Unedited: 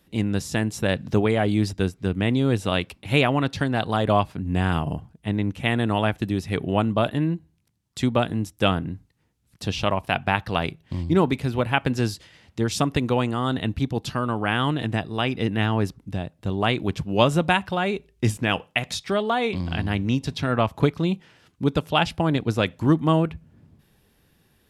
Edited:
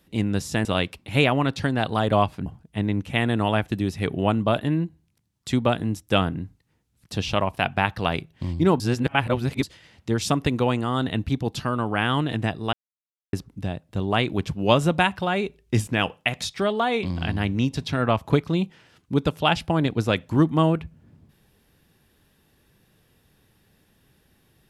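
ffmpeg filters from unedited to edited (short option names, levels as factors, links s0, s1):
-filter_complex "[0:a]asplit=7[s0][s1][s2][s3][s4][s5][s6];[s0]atrim=end=0.652[s7];[s1]atrim=start=2.618:end=4.432[s8];[s2]atrim=start=4.958:end=11.302[s9];[s3]atrim=start=11.298:end=12.132,asetpts=PTS-STARTPTS,areverse[s10];[s4]atrim=start=12.128:end=15.23,asetpts=PTS-STARTPTS,afade=t=out:st=3.098:d=0.004:c=hsin[s11];[s5]atrim=start=15.23:end=15.83,asetpts=PTS-STARTPTS,volume=0[s12];[s6]atrim=start=15.83,asetpts=PTS-STARTPTS,afade=t=in:d=0.004:c=hsin[s13];[s7][s8]acrossfade=d=0.004:c1=hsin:c2=hsin[s14];[s14][s9]acrossfade=d=0.004:c1=hsin:c2=hsin[s15];[s15][s10]acrossfade=d=0.004:c1=hsin:c2=hsin[s16];[s11][s12][s13]concat=n=3:v=0:a=1[s17];[s16][s17]acrossfade=d=0.004:c1=hsin:c2=hsin"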